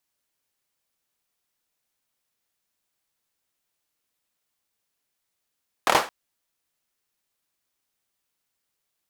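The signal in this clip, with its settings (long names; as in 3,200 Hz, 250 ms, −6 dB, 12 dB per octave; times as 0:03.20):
synth clap length 0.22 s, apart 26 ms, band 830 Hz, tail 0.30 s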